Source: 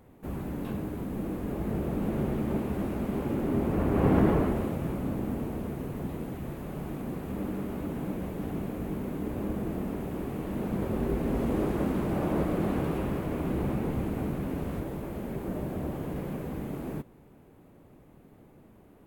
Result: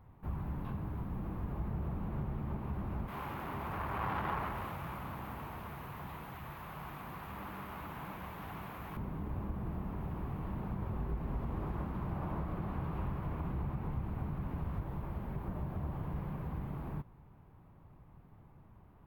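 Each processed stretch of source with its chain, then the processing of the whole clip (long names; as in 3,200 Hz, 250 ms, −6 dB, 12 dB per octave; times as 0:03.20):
0:03.08–0:08.97: high-pass filter 46 Hz + tilt shelving filter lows −10 dB, about 640 Hz + saturating transformer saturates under 1,200 Hz
whole clip: bass and treble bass +11 dB, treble −2 dB; downward compressor, threshold −23 dBFS; octave-band graphic EQ 250/500/1,000/8,000 Hz −8/−5/+10/−11 dB; level −8 dB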